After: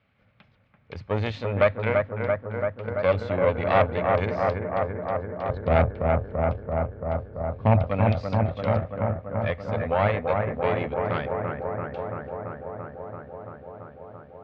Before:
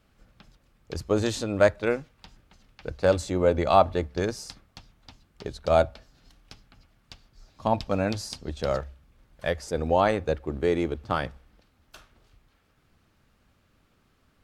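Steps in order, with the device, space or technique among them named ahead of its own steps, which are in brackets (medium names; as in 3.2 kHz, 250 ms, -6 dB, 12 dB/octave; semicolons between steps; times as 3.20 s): 5.49–7.87 s: RIAA curve playback; analogue delay pedal into a guitar amplifier (bucket-brigade echo 337 ms, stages 4096, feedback 81%, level -4 dB; valve stage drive 14 dB, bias 0.75; cabinet simulation 100–3600 Hz, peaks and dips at 100 Hz +9 dB, 340 Hz -9 dB, 580 Hz +3 dB, 2.2 kHz +8 dB); trim +2 dB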